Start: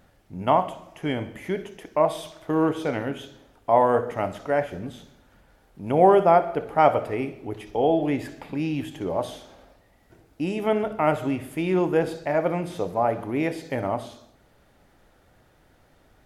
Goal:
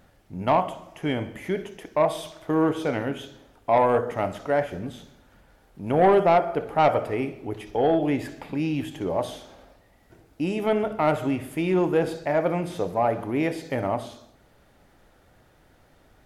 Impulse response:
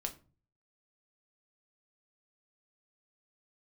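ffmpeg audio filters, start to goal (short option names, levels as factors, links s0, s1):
-af "asoftclip=type=tanh:threshold=0.251,volume=1.12"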